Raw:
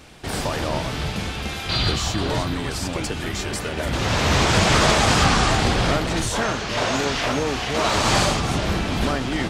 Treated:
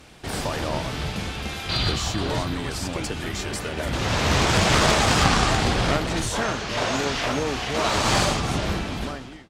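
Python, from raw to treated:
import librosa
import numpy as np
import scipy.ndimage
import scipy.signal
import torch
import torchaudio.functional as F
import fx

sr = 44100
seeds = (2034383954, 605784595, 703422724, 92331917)

y = fx.fade_out_tail(x, sr, length_s=0.85)
y = fx.cheby_harmonics(y, sr, harmonics=(2, 3, 8), levels_db=(-13, -22, -32), full_scale_db=-4.0)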